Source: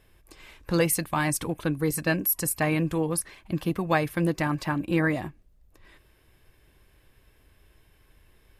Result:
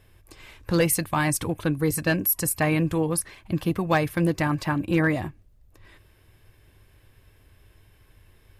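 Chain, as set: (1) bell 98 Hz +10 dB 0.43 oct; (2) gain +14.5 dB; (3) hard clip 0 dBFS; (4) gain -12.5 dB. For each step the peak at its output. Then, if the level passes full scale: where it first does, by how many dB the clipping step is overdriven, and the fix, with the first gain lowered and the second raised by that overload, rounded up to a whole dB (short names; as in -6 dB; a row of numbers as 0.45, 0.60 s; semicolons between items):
-9.0, +5.5, 0.0, -12.5 dBFS; step 2, 5.5 dB; step 2 +8.5 dB, step 4 -6.5 dB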